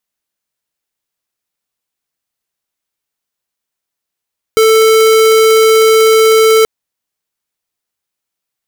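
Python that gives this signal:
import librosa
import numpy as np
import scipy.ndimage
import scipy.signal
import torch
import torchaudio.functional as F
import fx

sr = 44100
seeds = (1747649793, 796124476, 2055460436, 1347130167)

y = fx.tone(sr, length_s=2.08, wave='square', hz=442.0, level_db=-7.0)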